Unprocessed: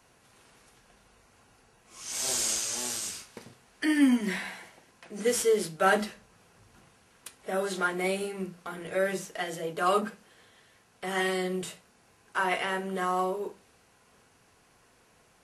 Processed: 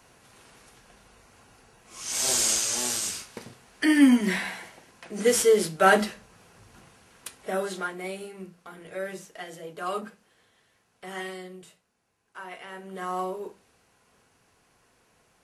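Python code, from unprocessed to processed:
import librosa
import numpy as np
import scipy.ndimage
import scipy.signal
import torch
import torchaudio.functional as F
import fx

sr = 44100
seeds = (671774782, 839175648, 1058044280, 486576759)

y = fx.gain(x, sr, db=fx.line((7.37, 5.0), (7.98, -6.0), (11.15, -6.0), (11.6, -13.0), (12.59, -13.0), (13.15, -2.0)))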